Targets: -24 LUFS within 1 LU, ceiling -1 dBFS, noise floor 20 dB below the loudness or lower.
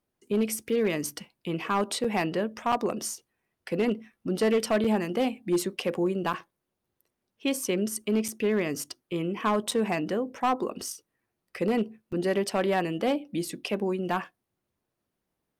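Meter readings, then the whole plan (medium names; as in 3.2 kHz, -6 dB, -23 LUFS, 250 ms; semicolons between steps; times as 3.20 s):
clipped samples 0.7%; clipping level -18.5 dBFS; dropouts 8; longest dropout 5.2 ms; loudness -28.5 LUFS; peak level -18.5 dBFS; loudness target -24.0 LUFS
-> clip repair -18.5 dBFS; interpolate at 0.69/2.04/2.72/4.84/6.33/8.28/9.71/12.12 s, 5.2 ms; trim +4.5 dB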